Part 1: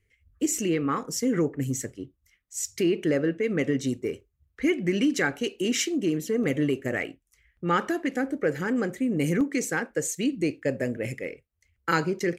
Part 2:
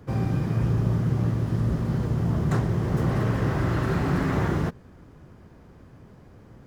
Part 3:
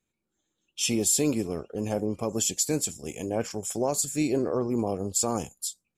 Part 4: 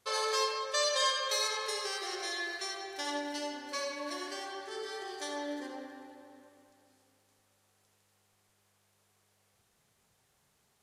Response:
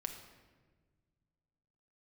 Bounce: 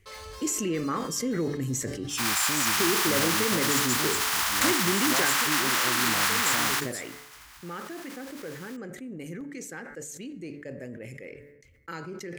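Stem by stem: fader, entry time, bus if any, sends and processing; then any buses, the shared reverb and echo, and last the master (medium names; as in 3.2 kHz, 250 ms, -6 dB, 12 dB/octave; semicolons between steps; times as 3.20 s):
5.24 s -7.5 dB -> 5.45 s -17.5 dB, 0.00 s, send -10.5 dB, gate with hold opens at -56 dBFS; de-hum 145.1 Hz, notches 15; level flattener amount 50%
+1.5 dB, 2.10 s, no send, spectral contrast reduction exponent 0.42; inverse Chebyshev high-pass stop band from 360 Hz, stop band 50 dB
-16.0 dB, 1.30 s, no send, peaking EQ 440 Hz -12.5 dB 0.39 oct; level rider gain up to 11.5 dB
-6.5 dB, 0.00 s, send -20 dB, waveshaping leveller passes 1; saturation -34 dBFS, distortion -7 dB; auto duck -15 dB, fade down 1.90 s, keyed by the first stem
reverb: on, RT60 1.5 s, pre-delay 5 ms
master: decay stretcher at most 48 dB/s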